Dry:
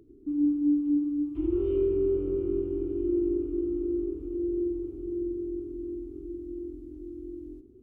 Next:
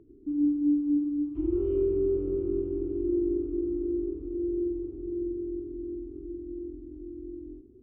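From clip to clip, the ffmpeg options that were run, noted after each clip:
-af "lowpass=f=1.1k:p=1"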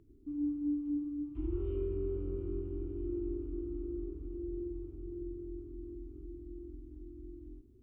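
-af "equalizer=f=400:t=o:w=2:g=-12.5,volume=1dB"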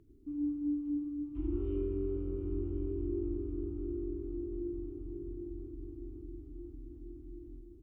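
-filter_complex "[0:a]asplit=2[a][b];[b]adelay=1067,lowpass=f=1.3k:p=1,volume=-7dB,asplit=2[c][d];[d]adelay=1067,lowpass=f=1.3k:p=1,volume=0.42,asplit=2[e][f];[f]adelay=1067,lowpass=f=1.3k:p=1,volume=0.42,asplit=2[g][h];[h]adelay=1067,lowpass=f=1.3k:p=1,volume=0.42,asplit=2[i][j];[j]adelay=1067,lowpass=f=1.3k:p=1,volume=0.42[k];[a][c][e][g][i][k]amix=inputs=6:normalize=0"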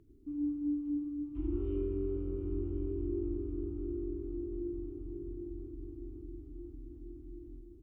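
-af anull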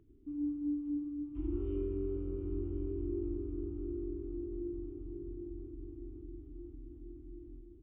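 -af "aresample=8000,aresample=44100,volume=-1.5dB"

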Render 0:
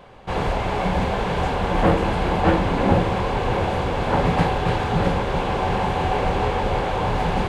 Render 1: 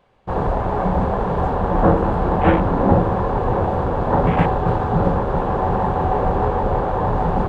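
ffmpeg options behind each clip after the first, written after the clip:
-af "afwtdn=0.0501,volume=3dB"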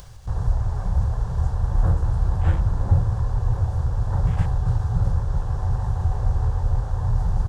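-af "firequalizer=gain_entry='entry(110,0);entry(210,-25);entry(1600,-16);entry(2300,-21);entry(5500,3)':delay=0.05:min_phase=1,acompressor=mode=upward:threshold=-27dB:ratio=2.5,volume=3dB"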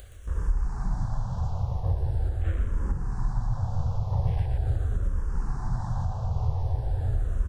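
-filter_complex "[0:a]asplit=5[a][b][c][d][e];[b]adelay=120,afreqshift=-84,volume=-5.5dB[f];[c]adelay=240,afreqshift=-168,volume=-15.4dB[g];[d]adelay=360,afreqshift=-252,volume=-25.3dB[h];[e]adelay=480,afreqshift=-336,volume=-35.2dB[i];[a][f][g][h][i]amix=inputs=5:normalize=0,alimiter=limit=-13dB:level=0:latency=1:release=377,asplit=2[j][k];[k]afreqshift=-0.42[l];[j][l]amix=inputs=2:normalize=1,volume=-1dB"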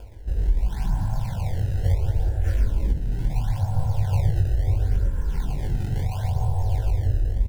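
-filter_complex "[0:a]acrossover=split=510[a][b];[b]acrusher=samples=22:mix=1:aa=0.000001:lfo=1:lforange=35.2:lforate=0.73[c];[a][c]amix=inputs=2:normalize=0,asuperstop=centerf=1200:order=4:qfactor=3.9,asplit=2[d][e];[e]adelay=20,volume=-5dB[f];[d][f]amix=inputs=2:normalize=0,volume=3.5dB"

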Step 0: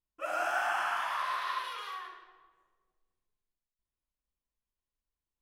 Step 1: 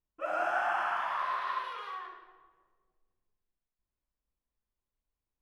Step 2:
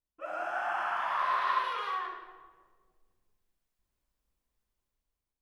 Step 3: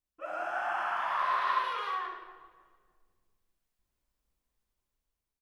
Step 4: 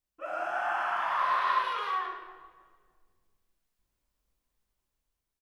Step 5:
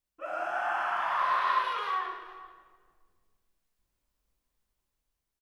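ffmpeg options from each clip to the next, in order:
-af "lowpass=f=1.2k:p=1,volume=3.5dB"
-af "dynaudnorm=f=480:g=5:m=12dB,volume=-5dB"
-filter_complex "[0:a]asplit=2[a][b];[b]adelay=292,lowpass=f=4.9k:p=1,volume=-24dB,asplit=2[c][d];[d]adelay=292,lowpass=f=4.9k:p=1,volume=0.44,asplit=2[e][f];[f]adelay=292,lowpass=f=4.9k:p=1,volume=0.44[g];[a][c][e][g]amix=inputs=4:normalize=0"
-filter_complex "[0:a]asplit=2[a][b];[b]adelay=24,volume=-10.5dB[c];[a][c]amix=inputs=2:normalize=0,volume=1.5dB"
-af "aecho=1:1:436:0.106"

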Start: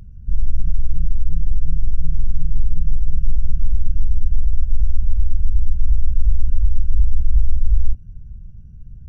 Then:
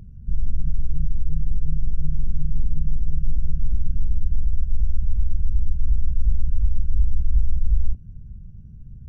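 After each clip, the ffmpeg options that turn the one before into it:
-af "equalizer=f=220:w=0.43:g=7.5,volume=-5dB"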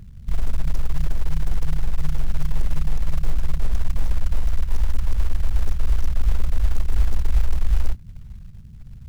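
-af "acrusher=bits=7:mode=log:mix=0:aa=0.000001"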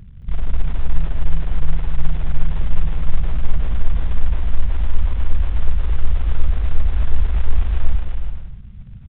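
-filter_complex "[0:a]aresample=8000,aresample=44100,asplit=2[a][b];[b]aecho=0:1:220|374|481.8|557.3|610.1:0.631|0.398|0.251|0.158|0.1[c];[a][c]amix=inputs=2:normalize=0,volume=1dB"

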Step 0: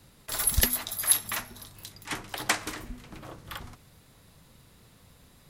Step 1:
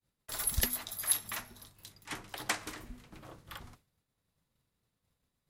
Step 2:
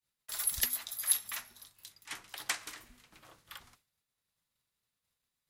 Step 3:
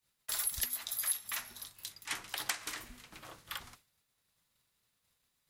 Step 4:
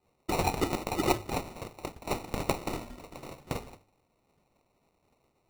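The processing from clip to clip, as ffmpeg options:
-af "agate=range=-33dB:threshold=-44dB:ratio=3:detection=peak,volume=-7dB"
-af "tiltshelf=f=820:g=-7.5,volume=-6.5dB"
-af "acompressor=threshold=-40dB:ratio=4,volume=7dB"
-af "acrusher=samples=27:mix=1:aa=0.000001,bandreject=f=50:t=h:w=6,bandreject=f=100:t=h:w=6,volume=7dB"

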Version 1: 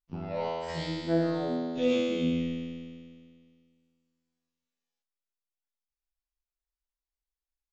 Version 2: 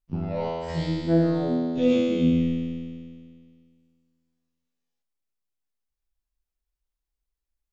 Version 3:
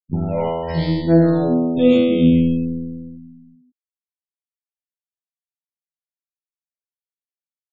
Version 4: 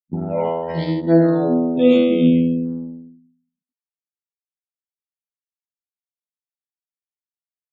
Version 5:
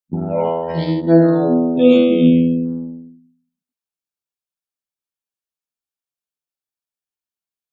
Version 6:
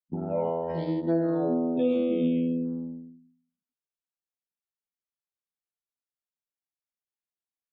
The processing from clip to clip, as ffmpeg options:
-af "lowshelf=f=360:g=11"
-af "afftfilt=real='re*gte(hypot(re,im),0.0112)':imag='im*gte(hypot(re,im),0.0112)':win_size=1024:overlap=0.75,volume=7.5dB"
-af "anlmdn=251,highpass=190,volume=1dB"
-af "bandreject=f=2k:w=8.3,volume=2.5dB"
-filter_complex "[0:a]acrossover=split=230|940[a][b][c];[a]acompressor=threshold=-30dB:ratio=4[d];[b]acompressor=threshold=-17dB:ratio=4[e];[c]acompressor=threshold=-37dB:ratio=4[f];[d][e][f]amix=inputs=3:normalize=0,highshelf=f=3.1k:g=-8,volume=-7dB"

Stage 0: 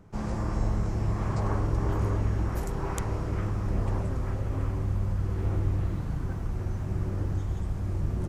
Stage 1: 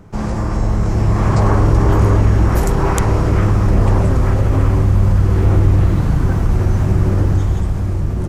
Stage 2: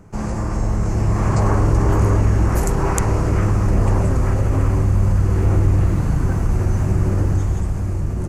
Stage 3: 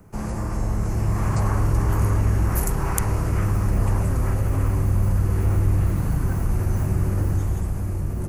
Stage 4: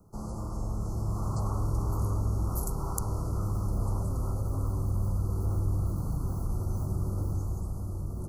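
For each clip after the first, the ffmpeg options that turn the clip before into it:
-filter_complex "[0:a]asplit=2[a][b];[b]alimiter=level_in=0.5dB:limit=-24dB:level=0:latency=1,volume=-0.5dB,volume=1dB[c];[a][c]amix=inputs=2:normalize=0,dynaudnorm=f=220:g=9:m=5.5dB,volume=5.5dB"
-af "superequalizer=13b=0.562:15b=1.78:16b=1.58,volume=-3.5dB"
-filter_complex "[0:a]acrossover=split=210|870|1900[a][b][c][d];[b]alimiter=level_in=0.5dB:limit=-24dB:level=0:latency=1,volume=-0.5dB[e];[d]aexciter=amount=5.3:drive=2.1:freq=9.7k[f];[a][e][c][f]amix=inputs=4:normalize=0,volume=-4dB"
-af "asuperstop=centerf=2400:order=20:qfactor=0.87,volume=-9dB"

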